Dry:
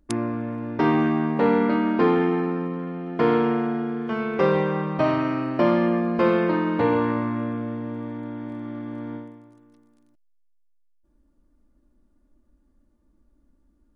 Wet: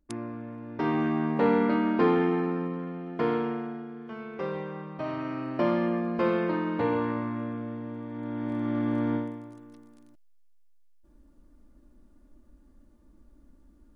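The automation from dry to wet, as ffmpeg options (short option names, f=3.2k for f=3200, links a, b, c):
-af "volume=15.5dB,afade=t=in:st=0.66:d=0.68:silence=0.473151,afade=t=out:st=2.65:d=1.23:silence=0.334965,afade=t=in:st=5.01:d=0.57:silence=0.446684,afade=t=in:st=8.09:d=0.76:silence=0.251189"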